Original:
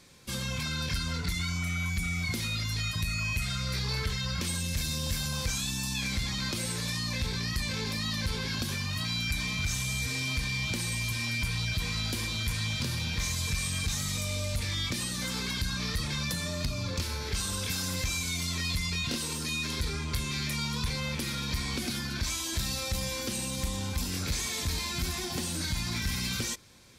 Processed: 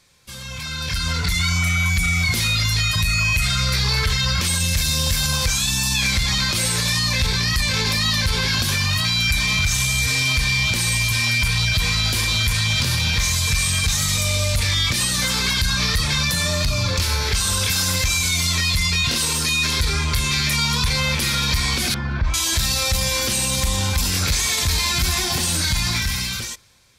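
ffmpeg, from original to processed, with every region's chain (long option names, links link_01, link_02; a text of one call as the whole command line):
ffmpeg -i in.wav -filter_complex "[0:a]asettb=1/sr,asplit=3[link_01][link_02][link_03];[link_01]atrim=end=21.944[link_04];[link_02]atrim=start=21.94:end=22.34,asetpts=PTS-STARTPTS,afade=type=in:duration=0.004:curve=qsin,afade=type=out:start_time=0.396:duration=0.004:curve=qsin,lowpass=1300,asubboost=boost=6.5:cutoff=180[link_05];[link_03]atrim=start=22.336[link_06];[link_04][link_05]acrossfade=duration=0.004:curve1=hsin:curve2=qsin[link_07];[link_07][link_06]acrossfade=duration=0.004:curve1=qsin:curve2=hsin,equalizer=frequency=270:width=0.8:gain=-9,alimiter=level_in=3dB:limit=-24dB:level=0:latency=1:release=31,volume=-3dB,dynaudnorm=framelen=140:gausssize=13:maxgain=15dB" out.wav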